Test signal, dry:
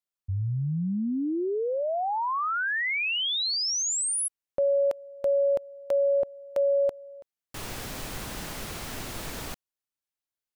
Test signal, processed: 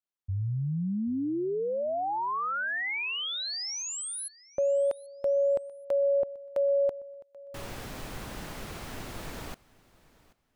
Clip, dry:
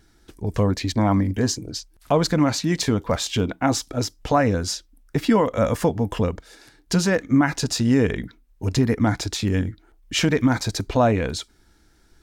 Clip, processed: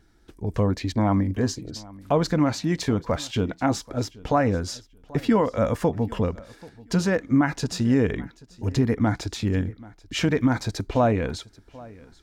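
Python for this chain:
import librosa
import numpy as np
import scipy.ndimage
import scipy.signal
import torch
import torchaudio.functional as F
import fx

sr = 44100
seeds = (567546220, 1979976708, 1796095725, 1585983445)

y = fx.high_shelf(x, sr, hz=3200.0, db=-7.0)
y = fx.echo_feedback(y, sr, ms=784, feedback_pct=22, wet_db=-22.0)
y = y * librosa.db_to_amplitude(-2.0)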